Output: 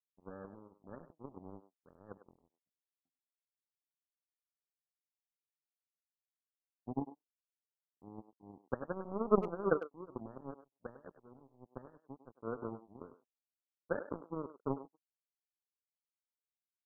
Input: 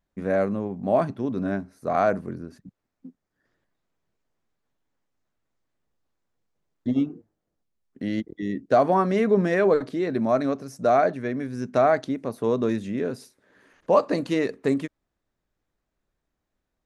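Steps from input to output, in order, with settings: steep low-pass 560 Hz 96 dB/octave; power-law waveshaper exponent 3; speakerphone echo 100 ms, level -12 dB; trim -1.5 dB

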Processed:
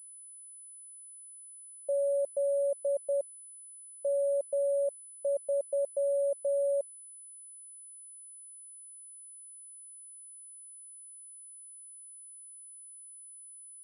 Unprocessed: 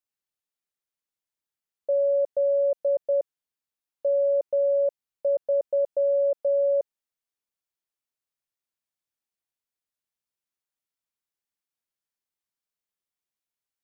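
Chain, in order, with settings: class-D stage that switches slowly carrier 10 kHz; trim -6.5 dB

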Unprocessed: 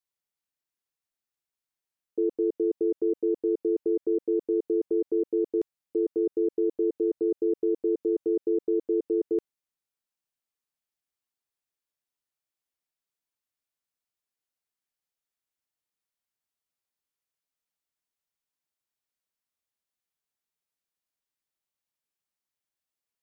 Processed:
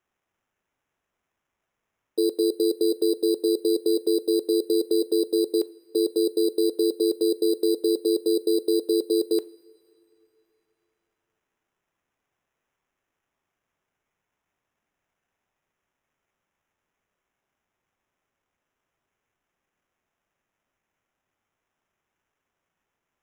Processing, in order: Bessel high-pass 450 Hz, order 2; sample-and-hold 10×; two-slope reverb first 0.39 s, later 2.9 s, from -18 dB, DRR 15.5 dB; trim +8 dB

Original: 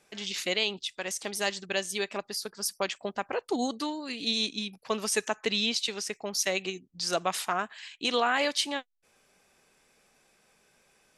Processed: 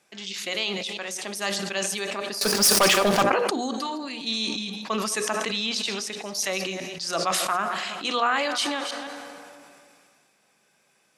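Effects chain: chunks repeated in reverse 162 ms, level -14 dB; high-pass 120 Hz 12 dB/octave; peaking EQ 440 Hz -4 dB 0.22 oct; plate-style reverb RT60 3.2 s, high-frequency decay 0.55×, DRR 16 dB; dynamic bell 1.2 kHz, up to +7 dB, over -50 dBFS, Q 4.4; 2.41–3.23 s: waveshaping leveller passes 5; hum notches 60/120/180/240/300/360/420/480/540/600 Hz; decay stretcher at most 24 dB/s

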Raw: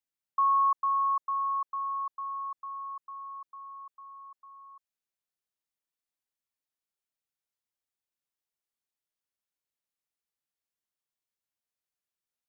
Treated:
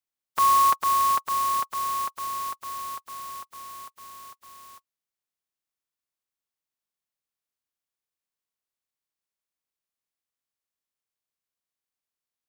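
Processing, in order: spectral contrast reduction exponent 0.32; small resonant body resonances 1.1 kHz, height 7 dB, ringing for 80 ms

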